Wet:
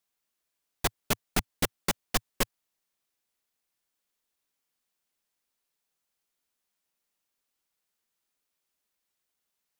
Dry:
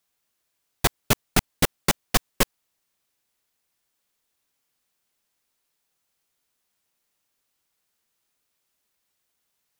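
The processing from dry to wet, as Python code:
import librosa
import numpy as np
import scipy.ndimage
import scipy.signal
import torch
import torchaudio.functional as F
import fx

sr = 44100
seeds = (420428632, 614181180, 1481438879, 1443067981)

y = fx.peak_eq(x, sr, hz=110.0, db=-15.0, octaves=0.26)
y = y * librosa.db_to_amplitude(-6.5)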